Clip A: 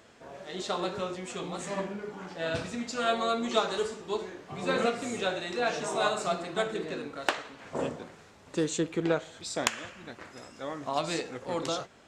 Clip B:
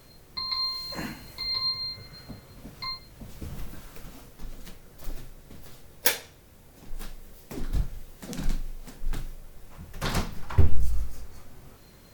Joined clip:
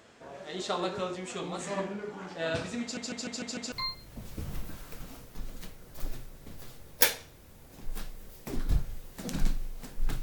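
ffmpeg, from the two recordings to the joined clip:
ffmpeg -i cue0.wav -i cue1.wav -filter_complex "[0:a]apad=whole_dur=10.22,atrim=end=10.22,asplit=6[link_01][link_02][link_03][link_04][link_05][link_06];[link_01]atrim=end=2.972[link_07];[link_02]atrim=start=2.818:end=2.972[link_08];[link_03]atrim=start=2.818:end=2.972[link_09];[link_04]atrim=start=2.818:end=2.972[link_10];[link_05]atrim=start=2.818:end=2.972[link_11];[link_06]atrim=start=2.818:end=2.972[link_12];[1:a]atrim=start=2.758:end=9.26[link_13];[link_07][link_08]acrossfade=duration=0.004:curve1=hsin:curve2=hsin[link_14];[link_14][link_09]acrossfade=duration=0.004:curve1=hsin:curve2=hsin[link_15];[link_15][link_10]acrossfade=duration=0.004:curve1=hsin:curve2=hsin[link_16];[link_16][link_11]acrossfade=duration=0.004:curve1=hsin:curve2=hsin[link_17];[link_17][link_12]acrossfade=duration=0.004:curve1=hsin:curve2=hsin[link_18];[link_18][link_13]acrossfade=duration=0.004:curve1=hsin:curve2=hsin" out.wav

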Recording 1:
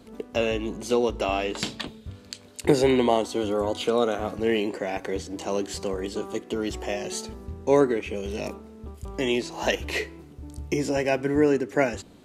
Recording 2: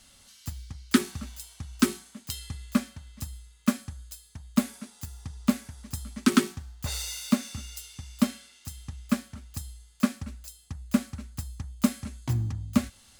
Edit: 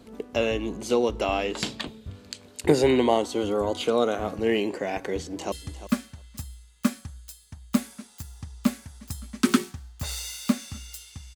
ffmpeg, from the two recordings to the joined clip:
ffmpeg -i cue0.wav -i cue1.wav -filter_complex "[0:a]apad=whole_dur=11.35,atrim=end=11.35,atrim=end=5.522[link_01];[1:a]atrim=start=2.348:end=8.18[link_02];[link_01][link_02]acrossfade=duration=0.004:curve1=hsin:curve2=hsin,asplit=2[link_03][link_04];[link_04]afade=type=in:start_time=5.13:duration=0.01,afade=type=out:start_time=5.52:duration=0.01,aecho=0:1:350|700:0.223872|0.0223872[link_05];[link_03][link_05]amix=inputs=2:normalize=0" out.wav

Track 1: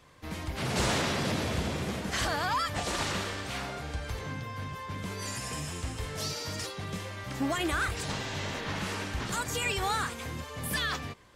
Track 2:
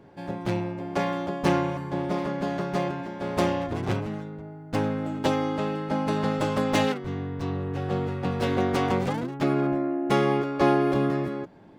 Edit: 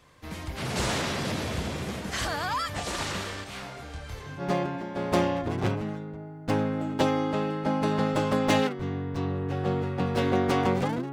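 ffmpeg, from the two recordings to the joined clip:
ffmpeg -i cue0.wav -i cue1.wav -filter_complex "[0:a]asettb=1/sr,asplit=3[link_01][link_02][link_03];[link_01]atrim=end=3.444[link_04];[link_02]atrim=start=3.44:end=4.43,asetpts=PTS-STARTPTS,afade=type=in:duration=0.004:curve=qsin,afade=type=out:start_time=0.986:duration=0.004:curve=qsin,flanger=delay=20:depth=7.9:speed=0.55[link_05];[link_03]atrim=start=4.426[link_06];[link_04][link_05]acrossfade=duration=0.004:curve1=hsin:curve2=qsin[link_07];[link_07][link_06]acrossfade=duration=0.004:curve1=qsin:curve2=hsin,apad=whole_dur=11.12,atrim=end=11.12,atrim=end=4.43,asetpts=PTS-STARTPTS[link_08];[1:a]atrim=start=2.62:end=9.37,asetpts=PTS-STARTPTS[link_09];[link_08][link_09]acrossfade=duration=0.06:curve1=tri:curve2=tri" out.wav

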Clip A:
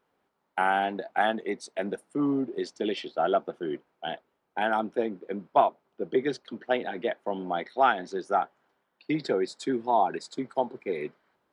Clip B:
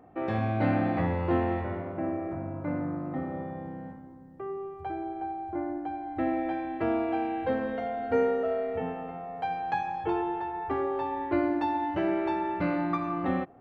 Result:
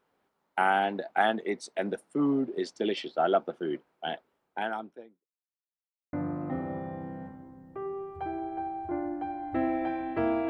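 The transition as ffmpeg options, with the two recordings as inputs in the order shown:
ffmpeg -i cue0.wav -i cue1.wav -filter_complex "[0:a]apad=whole_dur=10.49,atrim=end=10.49,asplit=2[link_01][link_02];[link_01]atrim=end=5.29,asetpts=PTS-STARTPTS,afade=type=out:start_time=4.42:duration=0.87:curve=qua[link_03];[link_02]atrim=start=5.29:end=6.13,asetpts=PTS-STARTPTS,volume=0[link_04];[1:a]atrim=start=2.77:end=7.13,asetpts=PTS-STARTPTS,afade=type=in:duration=0.004:curve=hsin[link_05];[link_03][link_04][link_05]concat=n=3:v=0:a=1" out.wav

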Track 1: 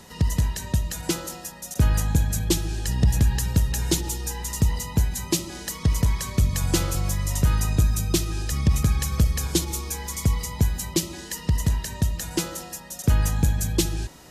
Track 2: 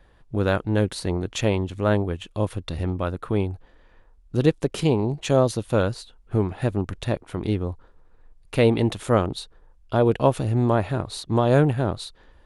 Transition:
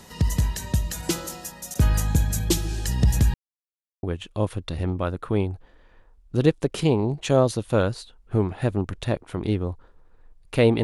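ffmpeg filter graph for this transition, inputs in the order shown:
ffmpeg -i cue0.wav -i cue1.wav -filter_complex "[0:a]apad=whole_dur=10.83,atrim=end=10.83,asplit=2[link_01][link_02];[link_01]atrim=end=3.34,asetpts=PTS-STARTPTS,afade=type=out:start_time=3.336:duration=0.004:curve=hsin[link_03];[link_02]atrim=start=3.34:end=4.03,asetpts=PTS-STARTPTS,volume=0[link_04];[1:a]atrim=start=2.03:end=8.83,asetpts=PTS-STARTPTS,afade=type=in:duration=0.004:curve=hsin[link_05];[link_03][link_04][link_05]concat=n=3:v=0:a=1" out.wav

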